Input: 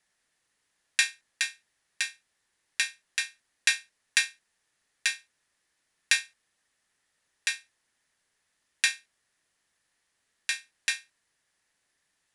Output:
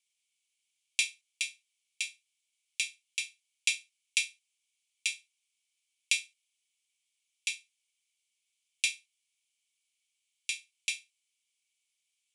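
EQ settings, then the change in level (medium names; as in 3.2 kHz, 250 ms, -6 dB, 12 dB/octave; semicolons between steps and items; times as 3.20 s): rippled Chebyshev high-pass 2.2 kHz, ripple 6 dB; treble shelf 3 kHz -8.5 dB; +5.5 dB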